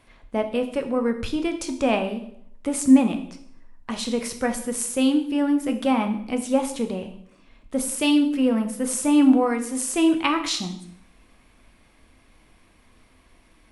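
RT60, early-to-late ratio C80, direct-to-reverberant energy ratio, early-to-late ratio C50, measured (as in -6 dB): 0.70 s, 13.5 dB, 5.5 dB, 11.0 dB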